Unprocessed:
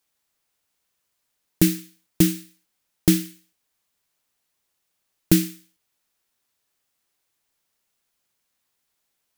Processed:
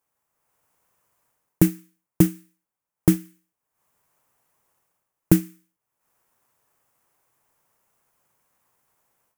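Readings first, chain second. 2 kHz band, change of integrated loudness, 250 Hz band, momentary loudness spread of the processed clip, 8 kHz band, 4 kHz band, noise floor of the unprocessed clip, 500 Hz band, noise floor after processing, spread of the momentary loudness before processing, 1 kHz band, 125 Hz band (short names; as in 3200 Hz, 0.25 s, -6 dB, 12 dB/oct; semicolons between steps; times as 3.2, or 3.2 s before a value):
-4.0 dB, -0.5 dB, 0.0 dB, 1 LU, -5.5 dB, -11.5 dB, -76 dBFS, +0.5 dB, under -85 dBFS, 14 LU, +4.5 dB, +1.5 dB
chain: graphic EQ 125/500/1000/4000 Hz +7/+4/+8/-11 dB; AGC gain up to 9 dB; transient shaper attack +3 dB, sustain -7 dB; gain -3.5 dB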